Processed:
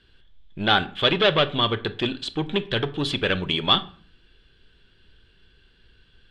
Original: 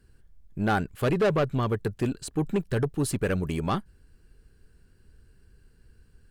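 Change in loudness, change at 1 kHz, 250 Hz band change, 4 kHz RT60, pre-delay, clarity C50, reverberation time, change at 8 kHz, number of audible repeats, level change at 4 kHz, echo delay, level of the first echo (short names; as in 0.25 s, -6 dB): +5.0 dB, +5.5 dB, 0.0 dB, 0.35 s, 3 ms, 17.5 dB, 0.45 s, -8.5 dB, none, +21.5 dB, none, none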